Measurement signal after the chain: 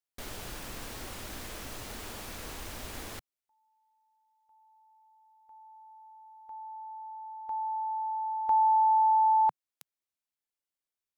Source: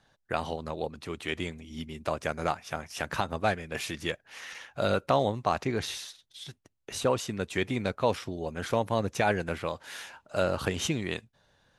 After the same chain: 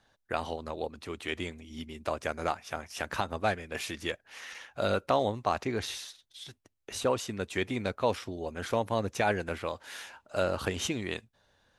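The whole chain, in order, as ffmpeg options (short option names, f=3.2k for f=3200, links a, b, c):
-af "equalizer=f=150:w=4.2:g=-9.5,volume=-1.5dB"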